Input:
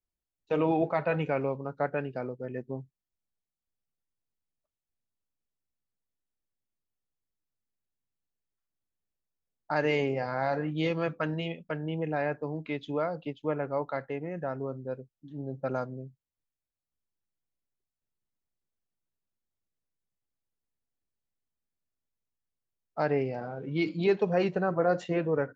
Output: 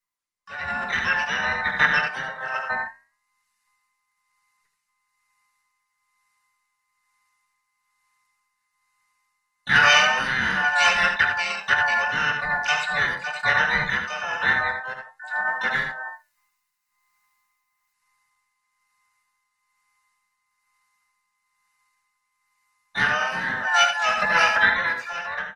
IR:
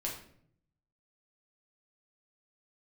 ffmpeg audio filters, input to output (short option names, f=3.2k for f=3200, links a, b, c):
-filter_complex "[0:a]afftfilt=real='real(if(between(b,1,1008),(2*floor((b-1)/48)+1)*48-b,b),0)':imag='imag(if(between(b,1,1008),(2*floor((b-1)/48)+1)*48-b,b),0)*if(between(b,1,1008),-1,1)':win_size=2048:overlap=0.75,acrossover=split=3000[a][b];[b]acompressor=threshold=-59dB:ratio=4:attack=1:release=60[c];[a][c]amix=inputs=2:normalize=0,aecho=1:1:26|79:0.168|0.473,asplit=4[d][e][f][g];[e]asetrate=35002,aresample=44100,atempo=1.25992,volume=-9dB[h];[f]asetrate=52444,aresample=44100,atempo=0.840896,volume=-11dB[i];[g]asetrate=88200,aresample=44100,atempo=0.5,volume=-10dB[j];[d][h][i][j]amix=inputs=4:normalize=0,tremolo=f=1.1:d=0.51,acrossover=split=580[k][l];[k]asoftclip=type=tanh:threshold=-35dB[m];[m][l]amix=inputs=2:normalize=0,flanger=delay=9.1:depth=7.2:regen=-80:speed=0.19:shape=triangular,firequalizer=gain_entry='entry(200,0);entry(320,-21);entry(1500,7)':delay=0.05:min_phase=1,dynaudnorm=f=200:g=11:m=15.5dB,lowshelf=f=82:g=-7.5,bandreject=f=3.3k:w=5.9,volume=3dB" -ar 48000 -c:a libopus -b:a 32k